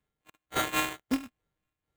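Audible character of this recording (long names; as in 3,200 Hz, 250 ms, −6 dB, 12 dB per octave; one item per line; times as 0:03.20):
a buzz of ramps at a fixed pitch in blocks of 32 samples
phaser sweep stages 2, 2.2 Hz, lowest notch 750–2,800 Hz
aliases and images of a low sample rate 5,200 Hz, jitter 0%
amplitude modulation by smooth noise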